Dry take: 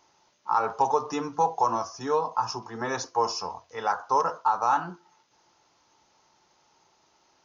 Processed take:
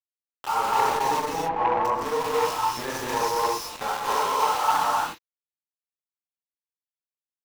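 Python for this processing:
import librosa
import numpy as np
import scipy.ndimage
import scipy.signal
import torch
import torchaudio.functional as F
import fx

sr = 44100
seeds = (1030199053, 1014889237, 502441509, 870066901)

y = fx.phase_scramble(x, sr, seeds[0], window_ms=200)
y = np.where(np.abs(y) >= 10.0 ** (-29.0 / 20.0), y, 0.0)
y = fx.lowpass(y, sr, hz=1400.0, slope=12, at=(1.19, 1.85))
y = fx.low_shelf(y, sr, hz=320.0, db=-7.5, at=(3.93, 4.74))
y = fx.rev_gated(y, sr, seeds[1], gate_ms=310, shape='rising', drr_db=-2.0)
y = fx.transformer_sat(y, sr, knee_hz=960.0)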